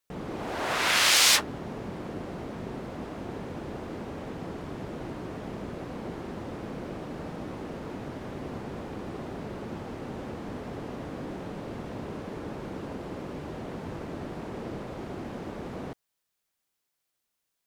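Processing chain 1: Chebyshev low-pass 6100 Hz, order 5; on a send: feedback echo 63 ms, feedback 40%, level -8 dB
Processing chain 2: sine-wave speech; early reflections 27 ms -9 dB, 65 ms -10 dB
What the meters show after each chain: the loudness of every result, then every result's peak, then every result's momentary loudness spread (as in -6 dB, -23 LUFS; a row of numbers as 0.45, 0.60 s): -32.0, -31.5 LUFS; -9.0, -11.0 dBFS; 11, 11 LU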